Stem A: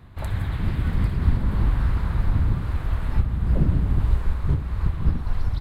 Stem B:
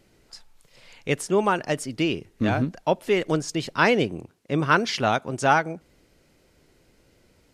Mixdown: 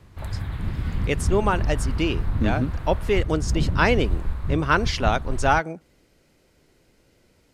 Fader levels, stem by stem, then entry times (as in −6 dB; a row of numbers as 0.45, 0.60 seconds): −3.5, −0.5 decibels; 0.00, 0.00 seconds